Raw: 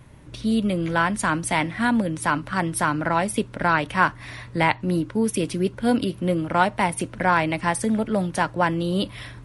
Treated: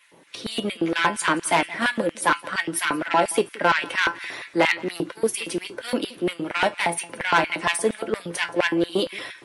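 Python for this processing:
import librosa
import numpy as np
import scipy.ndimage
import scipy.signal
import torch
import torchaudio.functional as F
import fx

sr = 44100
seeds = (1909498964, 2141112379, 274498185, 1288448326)

p1 = fx.spec_quant(x, sr, step_db=15)
p2 = fx.level_steps(p1, sr, step_db=22)
p3 = p1 + (p2 * 10.0 ** (-1.0 / 20.0))
p4 = fx.comb_fb(p3, sr, f0_hz=170.0, decay_s=0.18, harmonics='all', damping=0.0, mix_pct=70)
p5 = 10.0 ** (-18.5 / 20.0) * np.tanh(p4 / 10.0 ** (-18.5 / 20.0))
p6 = fx.filter_lfo_highpass(p5, sr, shape='square', hz=4.3, low_hz=380.0, high_hz=2100.0, q=1.6)
p7 = p6 + fx.echo_single(p6, sr, ms=173, db=-21.5, dry=0)
y = p7 * 10.0 ** (7.5 / 20.0)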